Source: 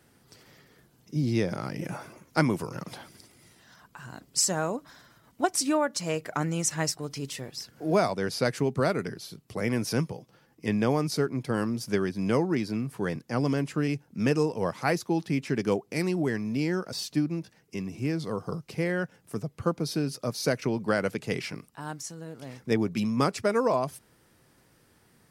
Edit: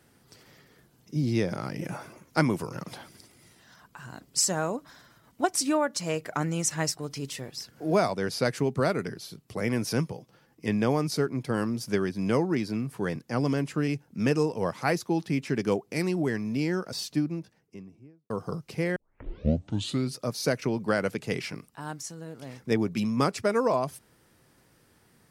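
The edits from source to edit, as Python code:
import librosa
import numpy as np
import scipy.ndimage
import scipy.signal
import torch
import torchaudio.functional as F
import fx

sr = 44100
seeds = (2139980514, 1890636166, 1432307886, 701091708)

y = fx.studio_fade_out(x, sr, start_s=17.0, length_s=1.3)
y = fx.edit(y, sr, fx.tape_start(start_s=18.96, length_s=1.2), tone=tone)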